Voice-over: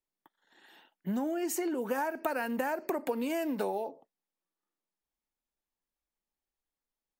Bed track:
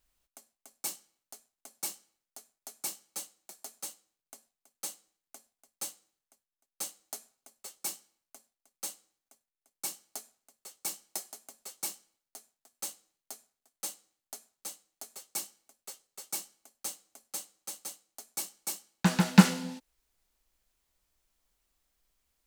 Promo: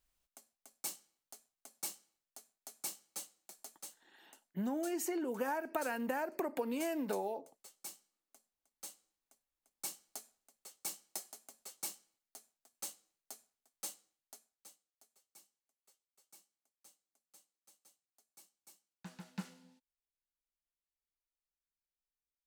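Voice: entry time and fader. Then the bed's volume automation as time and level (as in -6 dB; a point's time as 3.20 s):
3.50 s, -4.5 dB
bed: 3.54 s -5 dB
4.08 s -11.5 dB
8.65 s -11.5 dB
9.60 s -5.5 dB
14.01 s -5.5 dB
15.20 s -25.5 dB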